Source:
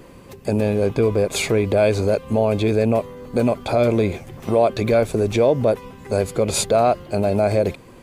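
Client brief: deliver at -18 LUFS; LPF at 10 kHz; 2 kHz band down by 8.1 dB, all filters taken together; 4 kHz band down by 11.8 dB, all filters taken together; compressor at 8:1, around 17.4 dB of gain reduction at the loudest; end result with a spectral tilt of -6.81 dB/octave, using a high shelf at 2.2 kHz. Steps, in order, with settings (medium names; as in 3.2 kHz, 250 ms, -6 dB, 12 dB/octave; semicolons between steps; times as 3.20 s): low-pass 10 kHz; peaking EQ 2 kHz -4.5 dB; treble shelf 2.2 kHz -7 dB; peaking EQ 4 kHz -6.5 dB; compression 8:1, threshold -32 dBFS; trim +18.5 dB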